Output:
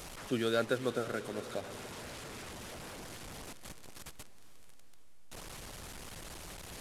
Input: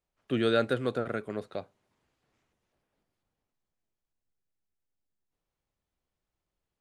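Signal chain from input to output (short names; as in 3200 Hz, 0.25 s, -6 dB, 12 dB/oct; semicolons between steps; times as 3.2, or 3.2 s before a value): delta modulation 64 kbps, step -36 dBFS; harmonic-percussive split harmonic -5 dB; diffused feedback echo 0.464 s, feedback 54%, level -15.5 dB; gain -2 dB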